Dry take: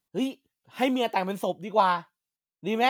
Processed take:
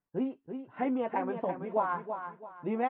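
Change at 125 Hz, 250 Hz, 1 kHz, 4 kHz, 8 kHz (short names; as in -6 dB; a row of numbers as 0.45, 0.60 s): -5.0 dB, -4.0 dB, -7.0 dB, under -25 dB, under -30 dB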